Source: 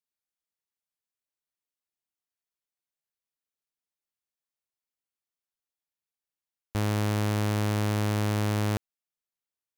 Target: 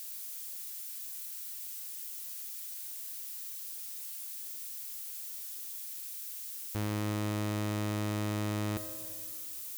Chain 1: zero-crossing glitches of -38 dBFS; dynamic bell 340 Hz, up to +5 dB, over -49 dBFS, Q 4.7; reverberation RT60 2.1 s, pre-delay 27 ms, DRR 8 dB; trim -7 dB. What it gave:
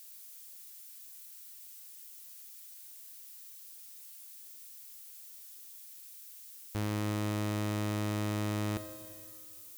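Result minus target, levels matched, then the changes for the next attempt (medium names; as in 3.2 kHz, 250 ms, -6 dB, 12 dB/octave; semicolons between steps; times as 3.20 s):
zero-crossing glitches: distortion -8 dB
change: zero-crossing glitches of -29.5 dBFS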